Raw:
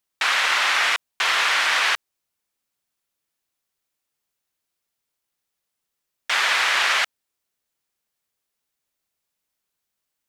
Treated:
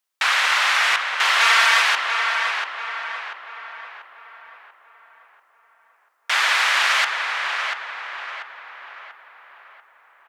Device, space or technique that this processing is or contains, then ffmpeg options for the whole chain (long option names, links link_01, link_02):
filter by subtraction: -filter_complex "[0:a]asettb=1/sr,asplit=3[link_01][link_02][link_03];[link_01]atrim=end=1.404[link_04];[link_02]atrim=start=1.4:end=1.82,asetpts=PTS-STARTPTS,afade=type=in:duration=0.004:curve=qsin,afade=type=out:start_time=0.416:duration=0.004:curve=qsin,aecho=1:1:4.4:0.93,atrim=end_sample=18522[link_05];[link_03]atrim=start=1.816[link_06];[link_04][link_05]acrossfade=duration=0.004:curve1=hsin:curve2=qsin[link_07];[link_07][link_06]acrossfade=duration=0.004:curve1=qsin:curve2=hsin,asplit=2[link_08][link_09];[link_09]adelay=689,lowpass=frequency=2500:poles=1,volume=-4dB,asplit=2[link_10][link_11];[link_11]adelay=689,lowpass=frequency=2500:poles=1,volume=0.51,asplit=2[link_12][link_13];[link_13]adelay=689,lowpass=frequency=2500:poles=1,volume=0.51,asplit=2[link_14][link_15];[link_15]adelay=689,lowpass=frequency=2500:poles=1,volume=0.51,asplit=2[link_16][link_17];[link_17]adelay=689,lowpass=frequency=2500:poles=1,volume=0.51,asplit=2[link_18][link_19];[link_19]adelay=689,lowpass=frequency=2500:poles=1,volume=0.51,asplit=2[link_20][link_21];[link_21]adelay=689,lowpass=frequency=2500:poles=1,volume=0.51[link_22];[link_08][link_10][link_12][link_14][link_16][link_18][link_20][link_22]amix=inputs=8:normalize=0,asplit=2[link_23][link_24];[link_24]lowpass=1000,volume=-1[link_25];[link_23][link_25]amix=inputs=2:normalize=0"